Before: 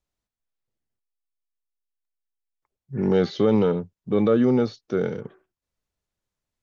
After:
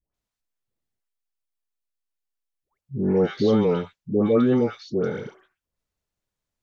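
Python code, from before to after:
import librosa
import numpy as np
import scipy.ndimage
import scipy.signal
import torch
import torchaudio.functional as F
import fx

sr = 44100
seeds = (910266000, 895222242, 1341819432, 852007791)

y = fx.dispersion(x, sr, late='highs', ms=144.0, hz=1000.0)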